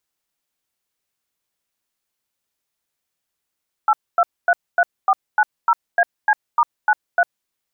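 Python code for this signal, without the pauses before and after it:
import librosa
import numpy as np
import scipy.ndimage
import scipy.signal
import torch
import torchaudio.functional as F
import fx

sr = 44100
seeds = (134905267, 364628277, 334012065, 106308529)

y = fx.dtmf(sr, digits='8233490AC*93', tone_ms=51, gap_ms=249, level_db=-14.0)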